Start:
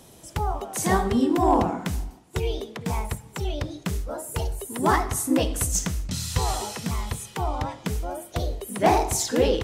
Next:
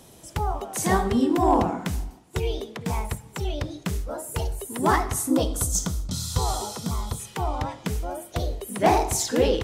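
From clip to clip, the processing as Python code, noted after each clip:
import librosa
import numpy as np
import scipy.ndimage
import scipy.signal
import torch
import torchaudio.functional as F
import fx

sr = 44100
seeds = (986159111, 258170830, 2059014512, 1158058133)

y = fx.spec_box(x, sr, start_s=5.3, length_s=1.89, low_hz=1500.0, high_hz=3100.0, gain_db=-10)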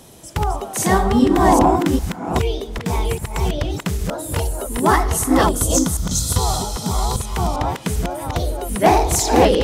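y = fx.reverse_delay(x, sr, ms=398, wet_db=-3)
y = y * librosa.db_to_amplitude(5.5)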